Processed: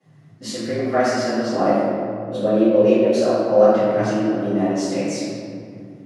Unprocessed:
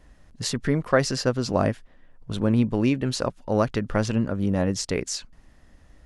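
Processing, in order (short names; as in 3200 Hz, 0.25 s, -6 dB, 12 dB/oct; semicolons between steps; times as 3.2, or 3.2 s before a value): 1.59–3.72 bell 440 Hz +14.5 dB 0.47 oct; frequency shift +100 Hz; reverb RT60 2.3 s, pre-delay 3 ms, DRR -19 dB; gain -17.5 dB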